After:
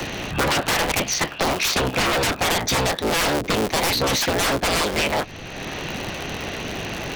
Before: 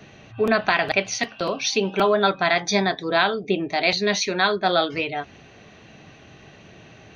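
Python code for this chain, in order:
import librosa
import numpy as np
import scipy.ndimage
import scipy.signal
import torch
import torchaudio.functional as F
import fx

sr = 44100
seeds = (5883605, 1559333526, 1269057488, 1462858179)

y = fx.cycle_switch(x, sr, every=3, mode='inverted')
y = 10.0 ** (-21.5 / 20.0) * (np.abs((y / 10.0 ** (-21.5 / 20.0) + 3.0) % 4.0 - 2.0) - 1.0)
y = fx.band_squash(y, sr, depth_pct=70)
y = y * 10.0 ** (6.0 / 20.0)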